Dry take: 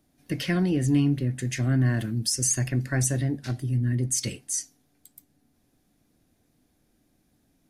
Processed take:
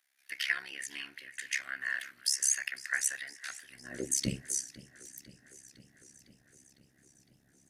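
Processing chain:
high-pass filter sweep 1,800 Hz → 120 Hz, 0:03.65–0:04.37
amplitude modulation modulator 68 Hz, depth 85%
feedback echo with a swinging delay time 506 ms, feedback 68%, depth 88 cents, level −19 dB

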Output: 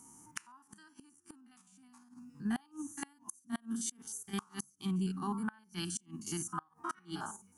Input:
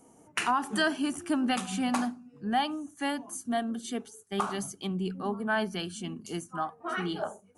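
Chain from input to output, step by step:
spectrum averaged block by block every 50 ms
drawn EQ curve 150 Hz 0 dB, 320 Hz −2 dB, 590 Hz −26 dB, 910 Hz +3 dB, 1,600 Hz 0 dB, 2,400 Hz −3 dB, 3,800 Hz −3 dB, 5,600 Hz +9 dB, 13,000 Hz +10 dB
gate with flip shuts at −25 dBFS, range −31 dB

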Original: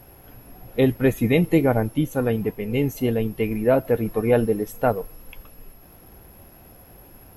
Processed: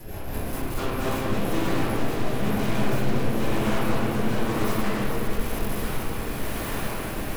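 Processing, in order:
0:01.85–0:04.10: parametric band 130 Hz +10.5 dB 0.33 octaves
downward compressor 2.5 to 1, threshold −38 dBFS, peak gain reduction 16.5 dB
brickwall limiter −26.5 dBFS, peak gain reduction 5.5 dB
automatic gain control gain up to 14.5 dB
log-companded quantiser 4 bits
wrap-around overflow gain 35.5 dB
rotating-speaker cabinet horn 5 Hz, later 1 Hz, at 0:00.52
delay that swaps between a low-pass and a high-pass 222 ms, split 1,400 Hz, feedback 88%, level −7 dB
convolution reverb RT60 2.2 s, pre-delay 5 ms, DRR −10 dB
level +4 dB

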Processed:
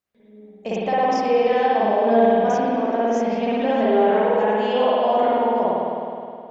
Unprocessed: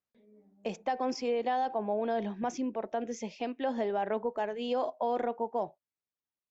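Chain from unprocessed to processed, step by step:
spring reverb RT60 2.5 s, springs 52 ms, chirp 60 ms, DRR −9 dB
level +4.5 dB

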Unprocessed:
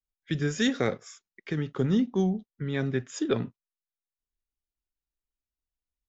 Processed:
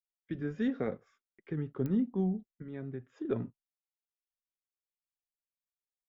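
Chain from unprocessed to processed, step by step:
low-pass filter 2,100 Hz 12 dB per octave
noise gate with hold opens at −48 dBFS
tilt shelving filter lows +4 dB, about 750 Hz
0:02.47–0:03.25: downward compressor 3 to 1, threshold −30 dBFS, peak gain reduction 8.5 dB
flanger 0.65 Hz, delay 2.3 ms, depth 2.2 ms, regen −64%
digital clicks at 0:01.86, −21 dBFS
level −4.5 dB

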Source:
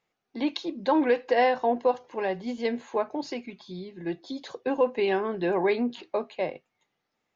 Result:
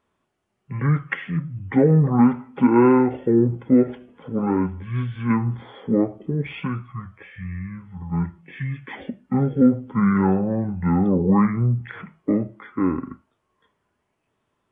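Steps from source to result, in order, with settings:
wrong playback speed 15 ips tape played at 7.5 ips
level +6.5 dB

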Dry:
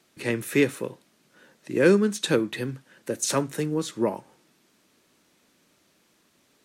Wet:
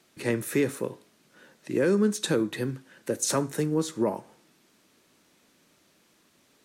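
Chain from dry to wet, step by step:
dynamic equaliser 2,800 Hz, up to −6 dB, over −45 dBFS, Q 1.2
brickwall limiter −15.5 dBFS, peak gain reduction 8.5 dB
tuned comb filter 53 Hz, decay 0.51 s, harmonics all, mix 30%
level +3 dB

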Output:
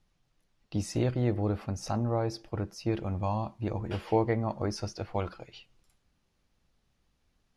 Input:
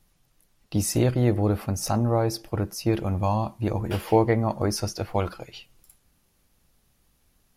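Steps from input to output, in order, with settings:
low-pass filter 5,600 Hz 12 dB per octave
level −6.5 dB

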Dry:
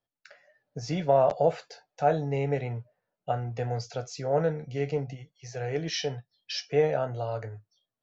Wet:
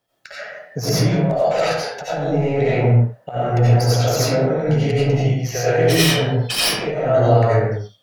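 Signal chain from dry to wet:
stylus tracing distortion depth 0.11 ms
high-pass filter 51 Hz
parametric band 85 Hz −6.5 dB 0.58 octaves
compressor whose output falls as the input rises −35 dBFS, ratio −1
convolution reverb, pre-delay 50 ms, DRR −10 dB
level +7 dB

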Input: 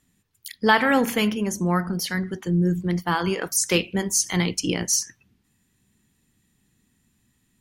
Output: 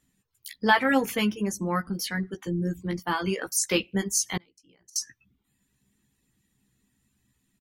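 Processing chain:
double-tracking delay 15 ms −5 dB
reverb reduction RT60 0.56 s
0:04.37–0:04.96: gate with flip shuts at −18 dBFS, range −32 dB
level −4.5 dB

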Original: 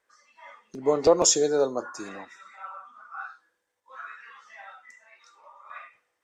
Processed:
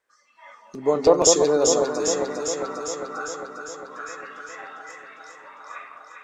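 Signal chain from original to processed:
automatic gain control gain up to 6 dB
on a send: delay that swaps between a low-pass and a high-pass 201 ms, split 1,200 Hz, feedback 81%, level −3 dB
on the sum: level −2 dB

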